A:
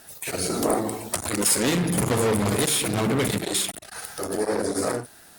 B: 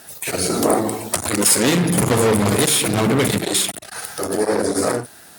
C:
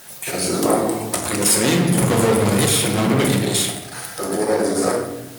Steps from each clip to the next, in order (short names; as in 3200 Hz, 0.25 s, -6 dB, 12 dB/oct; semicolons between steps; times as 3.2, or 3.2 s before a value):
HPF 69 Hz; gain +6 dB
in parallel at -3.5 dB: requantised 6-bit, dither triangular; on the sum: shoebox room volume 350 m³, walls mixed, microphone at 0.93 m; gain -7 dB